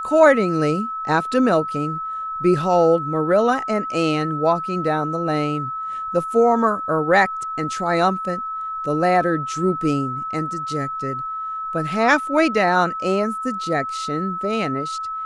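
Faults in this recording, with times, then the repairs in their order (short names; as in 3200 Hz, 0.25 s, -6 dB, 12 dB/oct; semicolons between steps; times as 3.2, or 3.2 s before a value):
tone 1300 Hz -25 dBFS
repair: notch 1300 Hz, Q 30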